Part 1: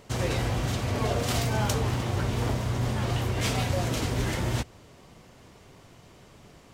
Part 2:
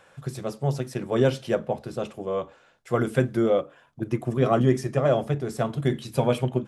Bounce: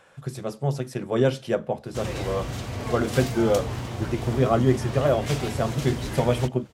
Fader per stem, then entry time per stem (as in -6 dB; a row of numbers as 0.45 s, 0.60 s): -3.5 dB, 0.0 dB; 1.85 s, 0.00 s